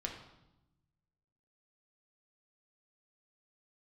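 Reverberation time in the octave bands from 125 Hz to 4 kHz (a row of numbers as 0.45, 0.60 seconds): 1.7, 1.4, 0.95, 0.90, 0.75, 0.80 seconds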